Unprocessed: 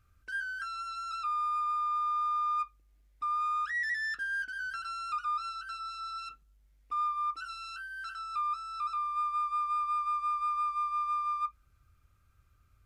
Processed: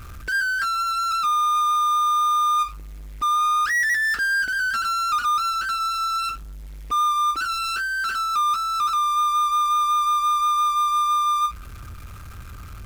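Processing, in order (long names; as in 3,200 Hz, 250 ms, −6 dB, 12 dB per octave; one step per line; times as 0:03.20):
power curve on the samples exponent 0.5
level +8.5 dB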